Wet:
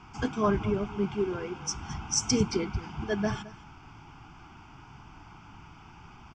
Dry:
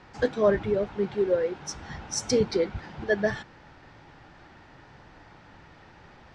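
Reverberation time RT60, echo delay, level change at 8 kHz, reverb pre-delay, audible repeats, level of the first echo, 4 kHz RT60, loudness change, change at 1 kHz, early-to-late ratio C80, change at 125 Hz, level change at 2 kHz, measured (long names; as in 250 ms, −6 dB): no reverb audible, 216 ms, +4.0 dB, no reverb audible, 1, −18.0 dB, no reverb audible, −2.5 dB, +2.5 dB, no reverb audible, +3.5 dB, −5.5 dB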